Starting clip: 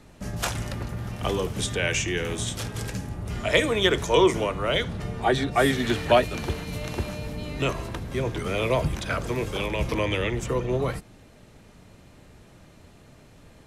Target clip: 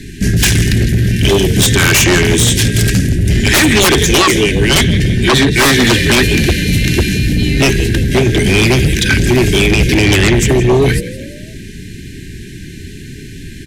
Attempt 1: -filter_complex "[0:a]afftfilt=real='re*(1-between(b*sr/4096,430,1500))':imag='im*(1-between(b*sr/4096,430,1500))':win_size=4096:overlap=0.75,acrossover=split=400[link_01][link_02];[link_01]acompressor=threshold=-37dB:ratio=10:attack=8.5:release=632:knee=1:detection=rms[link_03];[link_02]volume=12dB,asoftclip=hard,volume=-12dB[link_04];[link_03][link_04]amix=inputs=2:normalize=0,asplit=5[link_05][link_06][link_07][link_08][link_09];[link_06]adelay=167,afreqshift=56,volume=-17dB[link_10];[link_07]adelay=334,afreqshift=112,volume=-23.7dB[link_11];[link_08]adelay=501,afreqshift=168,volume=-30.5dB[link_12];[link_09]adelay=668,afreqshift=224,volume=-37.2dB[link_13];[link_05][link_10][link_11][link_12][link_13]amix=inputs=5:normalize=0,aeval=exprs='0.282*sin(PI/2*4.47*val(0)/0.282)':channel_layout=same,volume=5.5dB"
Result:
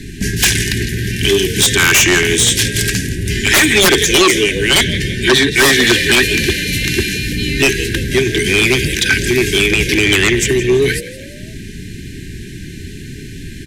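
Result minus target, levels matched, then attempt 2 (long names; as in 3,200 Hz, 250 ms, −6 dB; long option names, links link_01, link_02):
downward compressor: peak gain reduction +11 dB
-filter_complex "[0:a]afftfilt=real='re*(1-between(b*sr/4096,430,1500))':imag='im*(1-between(b*sr/4096,430,1500))':win_size=4096:overlap=0.75,acrossover=split=400[link_01][link_02];[link_01]acompressor=threshold=-25dB:ratio=10:attack=8.5:release=632:knee=1:detection=rms[link_03];[link_02]volume=12dB,asoftclip=hard,volume=-12dB[link_04];[link_03][link_04]amix=inputs=2:normalize=0,asplit=5[link_05][link_06][link_07][link_08][link_09];[link_06]adelay=167,afreqshift=56,volume=-17dB[link_10];[link_07]adelay=334,afreqshift=112,volume=-23.7dB[link_11];[link_08]adelay=501,afreqshift=168,volume=-30.5dB[link_12];[link_09]adelay=668,afreqshift=224,volume=-37.2dB[link_13];[link_05][link_10][link_11][link_12][link_13]amix=inputs=5:normalize=0,aeval=exprs='0.282*sin(PI/2*4.47*val(0)/0.282)':channel_layout=same,volume=5.5dB"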